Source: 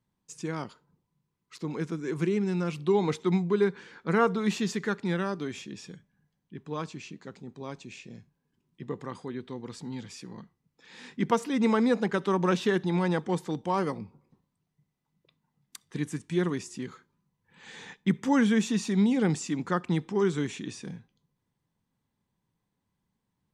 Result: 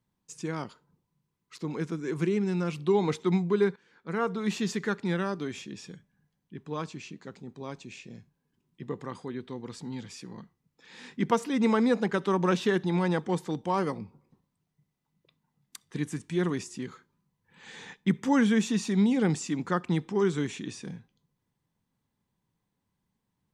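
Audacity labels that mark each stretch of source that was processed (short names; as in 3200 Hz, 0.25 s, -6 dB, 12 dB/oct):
3.760000	4.700000	fade in, from -21 dB
16.120000	16.640000	transient shaper attack -2 dB, sustain +2 dB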